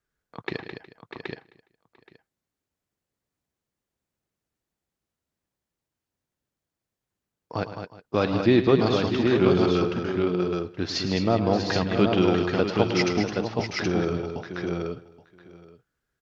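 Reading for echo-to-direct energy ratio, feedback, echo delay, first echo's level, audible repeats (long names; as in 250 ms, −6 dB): −1.0 dB, repeats not evenly spaced, 108 ms, −12.0 dB, 11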